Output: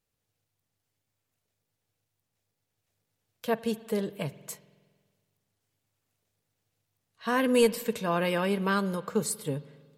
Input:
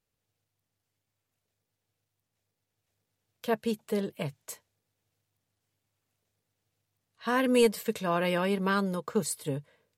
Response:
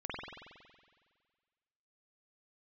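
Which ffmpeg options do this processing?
-filter_complex "[0:a]asplit=2[link_01][link_02];[link_02]bass=frequency=250:gain=4,treble=frequency=4000:gain=13[link_03];[1:a]atrim=start_sample=2205[link_04];[link_03][link_04]afir=irnorm=-1:irlink=0,volume=-20dB[link_05];[link_01][link_05]amix=inputs=2:normalize=0"

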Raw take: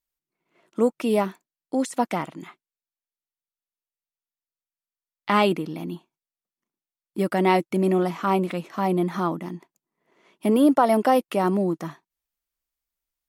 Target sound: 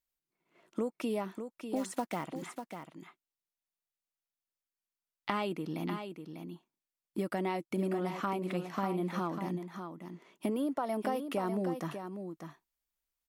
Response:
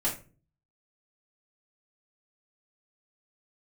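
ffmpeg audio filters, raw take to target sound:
-filter_complex "[0:a]acompressor=threshold=-28dB:ratio=6,asettb=1/sr,asplit=3[link_01][link_02][link_03];[link_01]atrim=end=1.764[link_04];[link_02]atrim=start=1.76:end=2.24,asetpts=PTS-STARTPTS,afade=type=in:duration=0.004:curve=qsin,afade=type=out:start_time=0.476:duration=0.004:curve=qsin,acrusher=bits=5:mode=log:mix=0:aa=0.000001[link_05];[link_03]atrim=start=2.236[link_06];[link_04][link_05]acrossfade=duration=0.004:curve1=hsin:curve2=qsin[link_07];[link_07][link_06]acrossfade=duration=0.004:curve1=qsin:curve2=hsin,aecho=1:1:596:0.398,volume=-3dB"

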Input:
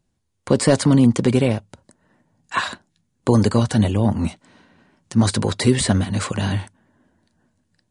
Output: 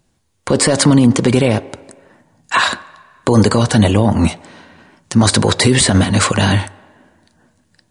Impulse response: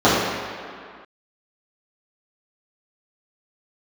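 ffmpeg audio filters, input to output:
-filter_complex "[0:a]lowshelf=frequency=320:gain=-5,asplit=2[link_01][link_02];[1:a]atrim=start_sample=2205,asetrate=66150,aresample=44100[link_03];[link_02][link_03]afir=irnorm=-1:irlink=0,volume=-43dB[link_04];[link_01][link_04]amix=inputs=2:normalize=0,alimiter=level_in=13.5dB:limit=-1dB:release=50:level=0:latency=1,volume=-1dB"

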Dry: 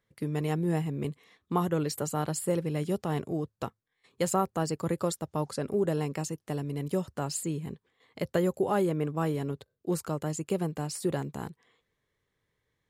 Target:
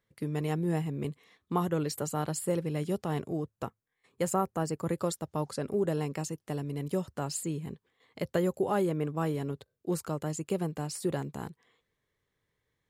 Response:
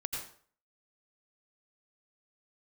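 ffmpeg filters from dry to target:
-filter_complex "[0:a]asettb=1/sr,asplit=3[link_01][link_02][link_03];[link_01]atrim=end=3.424[link_04];[link_02]atrim=start=3.42:end=4.88,asetpts=PTS-STARTPTS,afade=type=in:duration=0.004:curve=qsin,afade=type=out:start_time=1.456:duration=0.004:curve=qsin,equalizer=frequency=4000:width=1.3:gain=-6.5[link_05];[link_03]atrim=start=4.876[link_06];[link_04][link_05]acrossfade=duration=0.004:curve1=hsin:curve2=qsin[link_07];[link_07][link_06]acrossfade=duration=0.004:curve1=qsin:curve2=hsin,volume=-1.5dB"

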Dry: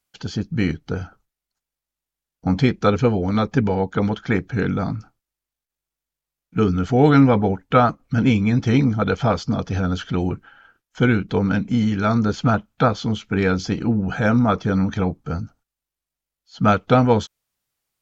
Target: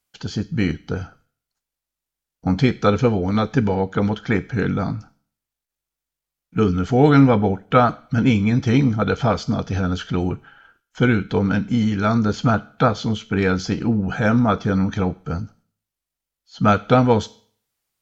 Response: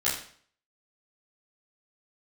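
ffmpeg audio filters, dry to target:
-filter_complex "[0:a]asplit=2[link_01][link_02];[1:a]atrim=start_sample=2205,highshelf=frequency=2500:gain=11[link_03];[link_02][link_03]afir=irnorm=-1:irlink=0,volume=-28dB[link_04];[link_01][link_04]amix=inputs=2:normalize=0"

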